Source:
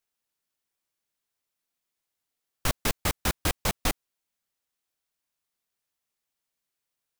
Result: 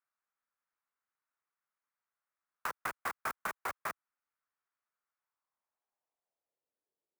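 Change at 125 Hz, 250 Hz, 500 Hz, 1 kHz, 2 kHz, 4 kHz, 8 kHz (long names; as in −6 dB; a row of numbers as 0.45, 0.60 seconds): −27.0, −20.5, −12.5, −3.5, −6.0, −20.0, −18.0 decibels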